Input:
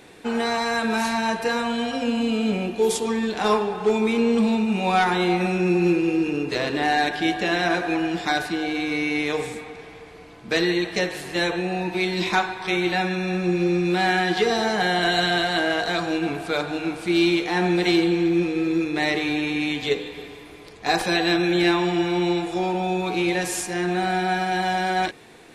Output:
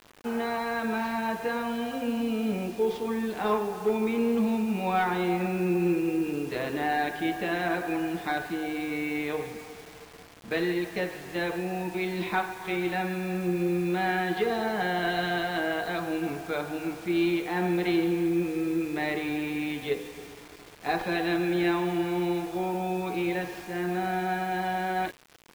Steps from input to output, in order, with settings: Gaussian low-pass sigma 2.5 samples; bit crusher 7-bit; trim -5.5 dB

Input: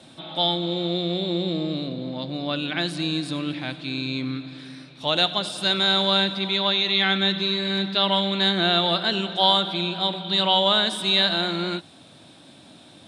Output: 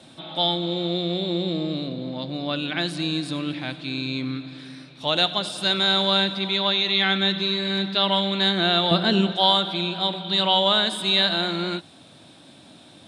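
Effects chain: 8.91–9.32 s: bass shelf 380 Hz +11.5 dB; 10.88–11.41 s: band-stop 5.7 kHz, Q 7.8

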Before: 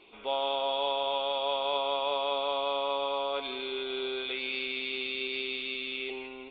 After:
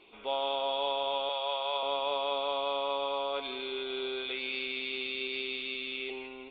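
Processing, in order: 1.29–1.83 s: high-pass 530 Hz 12 dB/octave; trim -1.5 dB

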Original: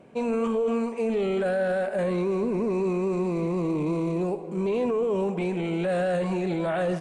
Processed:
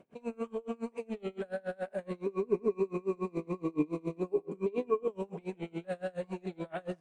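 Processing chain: peak limiter -21.5 dBFS, peak gain reduction 4 dB; 2.26–5.08 s: small resonant body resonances 290/410/1100/2400 Hz, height 15 dB, ringing for 95 ms; logarithmic tremolo 7.1 Hz, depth 30 dB; trim -4.5 dB

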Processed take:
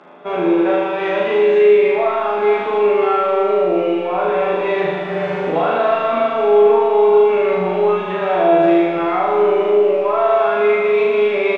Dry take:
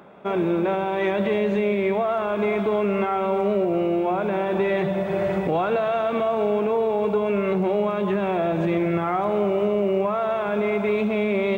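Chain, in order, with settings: high-pass 180 Hz 12 dB/octave; bass shelf 370 Hz -9 dB; in parallel at -6.5 dB: saturation -22 dBFS, distortion -16 dB; on the sum: distance through air 110 m; doubling 12 ms -2 dB; flutter echo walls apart 6.6 m, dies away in 1.3 s

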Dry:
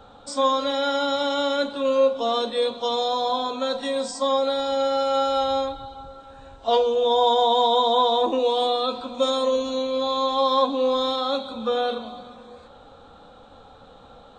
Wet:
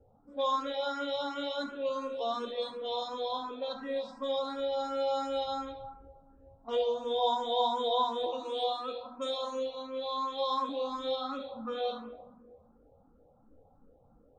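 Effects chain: level-controlled noise filter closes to 390 Hz, open at -17 dBFS; 8.26–10.69 s: bass shelf 290 Hz -7.5 dB; reverberation RT60 0.90 s, pre-delay 20 ms, DRR 6.5 dB; barber-pole phaser +2.8 Hz; trim -8.5 dB

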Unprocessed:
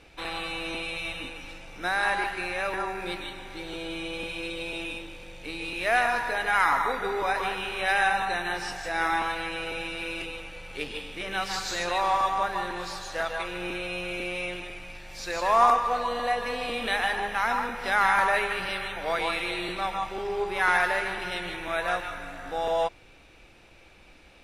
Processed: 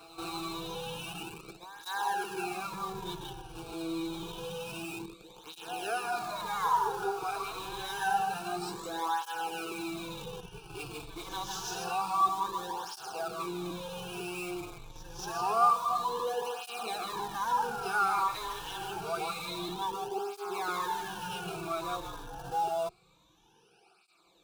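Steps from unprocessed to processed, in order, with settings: drifting ripple filter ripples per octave 1.1, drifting -0.84 Hz, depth 13 dB; bass shelf 190 Hz -3.5 dB; in parallel at -8 dB: Schmitt trigger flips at -33.5 dBFS; on the sum: static phaser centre 390 Hz, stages 8; on a send: reverse echo 231 ms -14 dB; on the sum: cancelling through-zero flanger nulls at 0.27 Hz, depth 5.5 ms; trim -3.5 dB

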